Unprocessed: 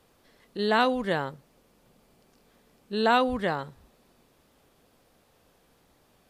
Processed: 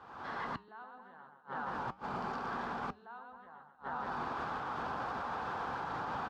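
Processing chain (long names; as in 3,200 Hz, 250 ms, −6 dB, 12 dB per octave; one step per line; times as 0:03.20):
camcorder AGC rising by 45 dB per second
high-frequency loss of the air 190 metres
on a send: reverse bouncing-ball delay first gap 120 ms, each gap 1.15×, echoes 5
on the sum: gate with flip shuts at −18 dBFS, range −41 dB
high-pass filter 71 Hz 12 dB per octave
flat-topped bell 1,100 Hz +14.5 dB 1.3 octaves
reversed playback
downward compressor 6 to 1, threshold −36 dBFS, peak gain reduction 14 dB
reversed playback
brickwall limiter −32 dBFS, peak gain reduction 9.5 dB
flanger 0.78 Hz, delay 2.6 ms, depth 5.7 ms, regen −83%
level +6.5 dB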